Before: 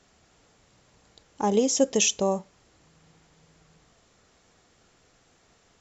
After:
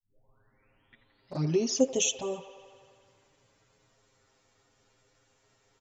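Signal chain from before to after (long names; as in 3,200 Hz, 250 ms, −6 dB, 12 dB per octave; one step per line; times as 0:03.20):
turntable start at the beginning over 1.90 s
comb filter 7.5 ms, depth 86%
flanger swept by the level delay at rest 10 ms, full sweep at −16.5 dBFS
on a send: delay with a band-pass on its return 85 ms, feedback 75%, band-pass 1,200 Hz, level −11 dB
on the sum: level −6 dB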